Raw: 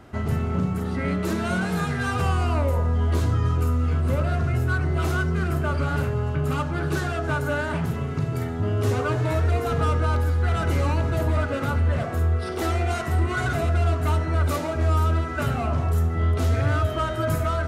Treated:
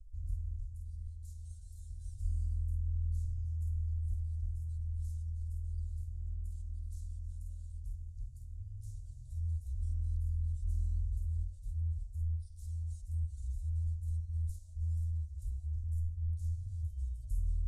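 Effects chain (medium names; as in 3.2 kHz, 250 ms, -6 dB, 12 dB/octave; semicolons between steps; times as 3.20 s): inverse Chebyshev band-stop 170–2500 Hz, stop band 70 dB; tape spacing loss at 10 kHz 32 dB; trim +13.5 dB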